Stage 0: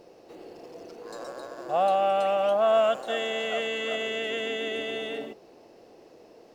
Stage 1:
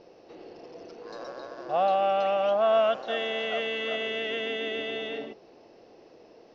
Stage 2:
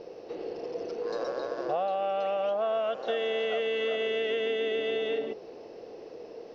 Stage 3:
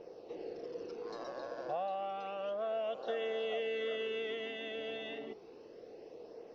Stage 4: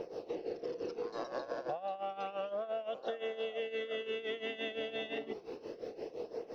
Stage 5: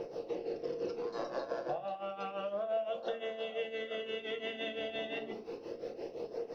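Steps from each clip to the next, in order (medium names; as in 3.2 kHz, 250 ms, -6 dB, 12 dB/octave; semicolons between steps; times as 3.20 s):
elliptic low-pass 5.8 kHz, stop band 40 dB
peaking EQ 460 Hz +8.5 dB 0.49 oct; compression 6:1, threshold -31 dBFS, peak gain reduction 13 dB; trim +4 dB
flange 0.31 Hz, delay 0.1 ms, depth 1.2 ms, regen -48%; trim -4 dB
tremolo 5.8 Hz, depth 81%; compression 6:1, threshold -47 dBFS, peak gain reduction 13.5 dB; trim +11.5 dB
simulated room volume 150 m³, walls furnished, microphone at 0.8 m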